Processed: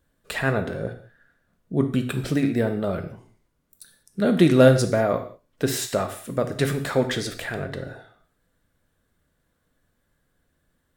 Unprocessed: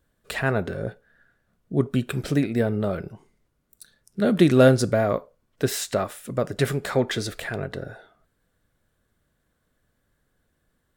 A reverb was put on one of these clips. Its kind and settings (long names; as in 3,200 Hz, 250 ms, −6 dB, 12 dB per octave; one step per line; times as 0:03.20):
reverb whose tail is shaped and stops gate 220 ms falling, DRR 7 dB